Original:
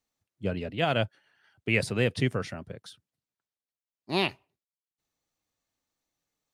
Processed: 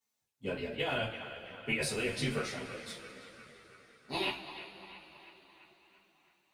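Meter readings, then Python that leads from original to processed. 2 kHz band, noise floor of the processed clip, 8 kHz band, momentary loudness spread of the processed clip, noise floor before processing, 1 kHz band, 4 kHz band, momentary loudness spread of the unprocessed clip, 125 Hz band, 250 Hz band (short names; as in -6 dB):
-4.5 dB, -84 dBFS, +3.0 dB, 21 LU, under -85 dBFS, -6.0 dB, -3.0 dB, 13 LU, -10.5 dB, -7.5 dB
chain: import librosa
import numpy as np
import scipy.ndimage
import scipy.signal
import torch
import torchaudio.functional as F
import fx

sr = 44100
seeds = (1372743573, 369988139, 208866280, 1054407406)

y = fx.octave_divider(x, sr, octaves=2, level_db=-2.0)
y = fx.highpass(y, sr, hz=300.0, slope=6)
y = fx.high_shelf(y, sr, hz=6600.0, db=6.0)
y = fx.over_compress(y, sr, threshold_db=-28.0, ratio=-0.5)
y = fx.echo_banded(y, sr, ms=336, feedback_pct=67, hz=1500.0, wet_db=-10)
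y = fx.rev_double_slope(y, sr, seeds[0], early_s=0.26, late_s=4.4, knee_db=-22, drr_db=-5.5)
y = fx.ensemble(y, sr)
y = y * librosa.db_to_amplitude(-6.0)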